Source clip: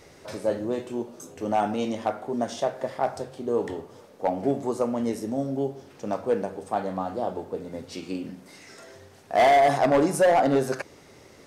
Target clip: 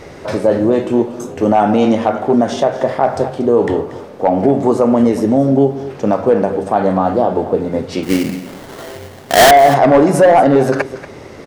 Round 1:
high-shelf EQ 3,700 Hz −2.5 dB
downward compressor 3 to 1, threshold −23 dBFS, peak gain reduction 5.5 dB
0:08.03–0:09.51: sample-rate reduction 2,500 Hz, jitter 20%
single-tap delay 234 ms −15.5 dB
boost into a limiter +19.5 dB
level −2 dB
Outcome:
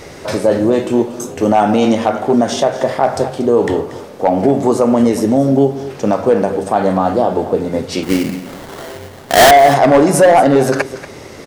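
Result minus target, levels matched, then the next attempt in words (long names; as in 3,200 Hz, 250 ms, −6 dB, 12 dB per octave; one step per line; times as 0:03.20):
8,000 Hz band +3.0 dB
high-shelf EQ 3,700 Hz −12.5 dB
downward compressor 3 to 1, threshold −23 dBFS, peak gain reduction 5.5 dB
0:08.03–0:09.51: sample-rate reduction 2,500 Hz, jitter 20%
single-tap delay 234 ms −15.5 dB
boost into a limiter +19.5 dB
level −2 dB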